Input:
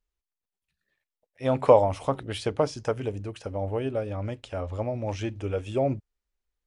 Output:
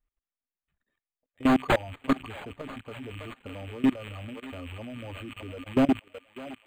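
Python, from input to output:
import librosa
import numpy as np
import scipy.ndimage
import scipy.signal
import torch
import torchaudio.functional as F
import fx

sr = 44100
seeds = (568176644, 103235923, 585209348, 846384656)

p1 = fx.rattle_buzz(x, sr, strikes_db=-38.0, level_db=-19.0)
p2 = fx.small_body(p1, sr, hz=(260.0, 1200.0), ring_ms=90, db=15)
p3 = fx.dereverb_blind(p2, sr, rt60_s=0.97)
p4 = fx.low_shelf(p3, sr, hz=78.0, db=8.0)
p5 = 10.0 ** (-14.5 / 20.0) * (np.abs((p4 / 10.0 ** (-14.5 / 20.0) + 3.0) % 4.0 - 2.0) - 1.0)
p6 = fx.peak_eq(p5, sr, hz=8800.0, db=12.0, octaves=0.36)
p7 = p6 + fx.echo_thinned(p6, sr, ms=611, feedback_pct=59, hz=750.0, wet_db=-9.0, dry=0)
p8 = fx.level_steps(p7, sr, step_db=20)
p9 = np.interp(np.arange(len(p8)), np.arange(len(p8))[::8], p8[::8])
y = F.gain(torch.from_numpy(p9), 1.5).numpy()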